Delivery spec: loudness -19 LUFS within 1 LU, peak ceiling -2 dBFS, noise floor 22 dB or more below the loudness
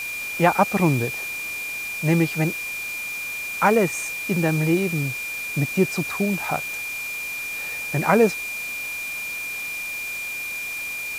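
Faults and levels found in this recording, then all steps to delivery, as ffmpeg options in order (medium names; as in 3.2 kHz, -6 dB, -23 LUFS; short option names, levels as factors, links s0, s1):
steady tone 2.4 kHz; tone level -28 dBFS; noise floor -30 dBFS; noise floor target -46 dBFS; loudness -23.5 LUFS; peak level -2.5 dBFS; loudness target -19.0 LUFS
-> -af "bandreject=f=2400:w=30"
-af "afftdn=nr=16:nf=-30"
-af "volume=1.68,alimiter=limit=0.794:level=0:latency=1"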